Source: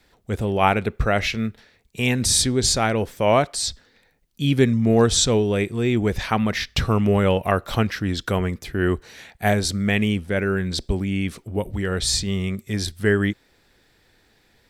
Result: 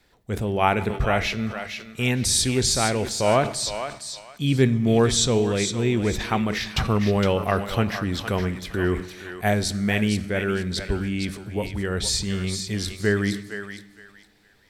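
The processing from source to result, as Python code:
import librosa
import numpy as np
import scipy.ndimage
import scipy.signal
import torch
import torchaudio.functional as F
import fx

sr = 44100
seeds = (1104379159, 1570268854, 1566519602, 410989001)

y = fx.echo_thinned(x, sr, ms=462, feedback_pct=25, hz=790.0, wet_db=-7.0)
y = fx.rev_fdn(y, sr, rt60_s=1.3, lf_ratio=1.45, hf_ratio=0.9, size_ms=47.0, drr_db=15.0)
y = fx.sustainer(y, sr, db_per_s=120.0)
y = y * 10.0 ** (-2.5 / 20.0)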